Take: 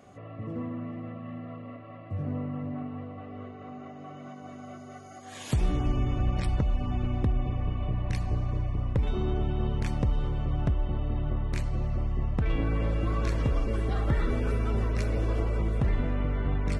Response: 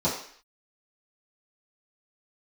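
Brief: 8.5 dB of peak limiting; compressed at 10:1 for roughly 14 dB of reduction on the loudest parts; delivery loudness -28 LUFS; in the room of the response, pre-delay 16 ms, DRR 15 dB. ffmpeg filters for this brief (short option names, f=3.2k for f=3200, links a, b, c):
-filter_complex "[0:a]acompressor=threshold=-36dB:ratio=10,alimiter=level_in=9dB:limit=-24dB:level=0:latency=1,volume=-9dB,asplit=2[a][b];[1:a]atrim=start_sample=2205,adelay=16[c];[b][c]afir=irnorm=-1:irlink=0,volume=-27dB[d];[a][d]amix=inputs=2:normalize=0,volume=14dB"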